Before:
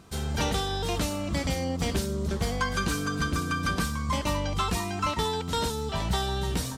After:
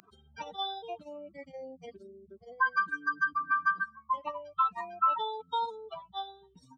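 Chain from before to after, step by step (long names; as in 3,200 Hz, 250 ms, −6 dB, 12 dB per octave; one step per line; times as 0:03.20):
expanding power law on the bin magnitudes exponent 3.4
high-pass filter 1,100 Hz 12 dB per octave
upward compression, threshold −55 dBFS
level +5 dB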